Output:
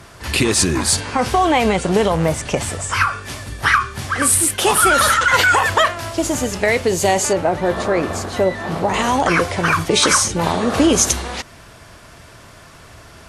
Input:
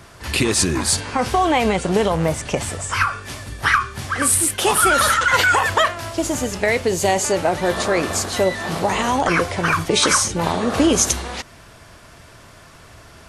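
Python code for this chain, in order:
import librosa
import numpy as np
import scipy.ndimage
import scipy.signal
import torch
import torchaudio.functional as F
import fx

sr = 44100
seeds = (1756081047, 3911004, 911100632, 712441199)

y = fx.cheby_harmonics(x, sr, harmonics=(5,), levels_db=(-34,), full_scale_db=-2.5)
y = fx.high_shelf(y, sr, hz=2500.0, db=-11.0, at=(7.33, 8.94))
y = y * 10.0 ** (1.5 / 20.0)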